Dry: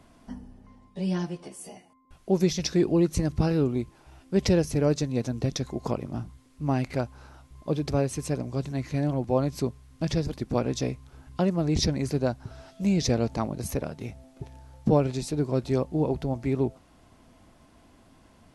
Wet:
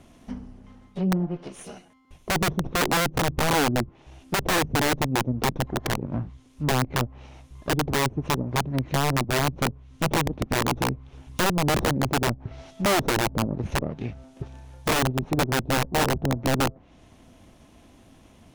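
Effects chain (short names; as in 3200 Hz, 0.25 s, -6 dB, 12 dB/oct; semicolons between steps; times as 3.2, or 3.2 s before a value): minimum comb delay 0.31 ms; treble ducked by the level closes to 480 Hz, closed at -24 dBFS; wrapped overs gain 21 dB; gain +4.5 dB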